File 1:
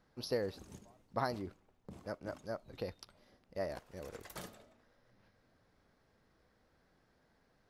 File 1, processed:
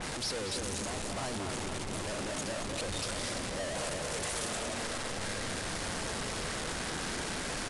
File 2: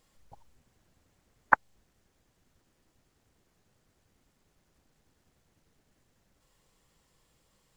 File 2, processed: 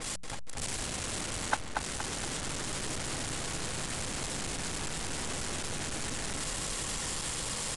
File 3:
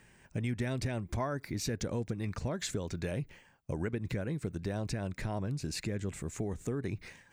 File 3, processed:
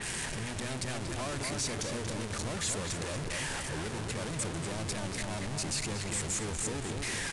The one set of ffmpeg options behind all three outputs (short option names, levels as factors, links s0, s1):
-filter_complex "[0:a]aeval=exprs='val(0)+0.5*0.15*sgn(val(0))':c=same,agate=range=0.126:threshold=0.224:ratio=16:detection=peak,aemphasis=mode=production:type=75fm,bandreject=f=60:t=h:w=6,bandreject=f=120:t=h:w=6,bandreject=f=180:t=h:w=6,asplit=2[s0][s1];[s1]adelay=235,lowpass=f=3200:p=1,volume=0.631,asplit=2[s2][s3];[s3]adelay=235,lowpass=f=3200:p=1,volume=0.47,asplit=2[s4][s5];[s5]adelay=235,lowpass=f=3200:p=1,volume=0.47,asplit=2[s6][s7];[s7]adelay=235,lowpass=f=3200:p=1,volume=0.47,asplit=2[s8][s9];[s9]adelay=235,lowpass=f=3200:p=1,volume=0.47,asplit=2[s10][s11];[s11]adelay=235,lowpass=f=3200:p=1,volume=0.47[s12];[s0][s2][s4][s6][s8][s10][s12]amix=inputs=7:normalize=0,aresample=22050,aresample=44100,adynamicequalizer=threshold=0.00282:dfrequency=3900:dqfactor=0.7:tfrequency=3900:tqfactor=0.7:attack=5:release=100:ratio=0.375:range=2.5:mode=cutabove:tftype=highshelf,volume=1.33"